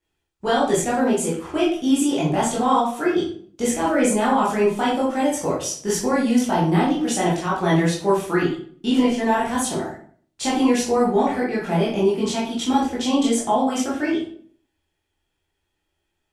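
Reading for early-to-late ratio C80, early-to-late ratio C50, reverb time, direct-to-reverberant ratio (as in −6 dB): 9.0 dB, 4.5 dB, 0.55 s, −7.5 dB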